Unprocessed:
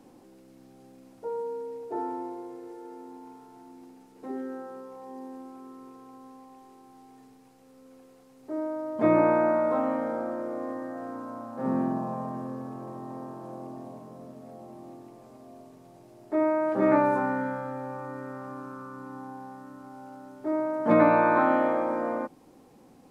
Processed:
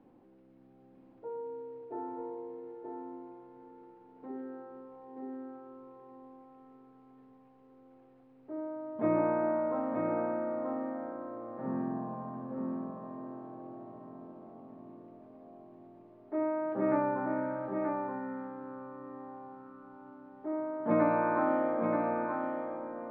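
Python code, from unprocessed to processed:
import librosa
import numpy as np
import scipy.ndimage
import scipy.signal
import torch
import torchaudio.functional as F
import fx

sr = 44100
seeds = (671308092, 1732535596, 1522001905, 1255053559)

p1 = fx.air_absorb(x, sr, metres=460.0)
p2 = p1 + fx.echo_single(p1, sr, ms=930, db=-4.5, dry=0)
y = F.gain(torch.from_numpy(p2), -6.0).numpy()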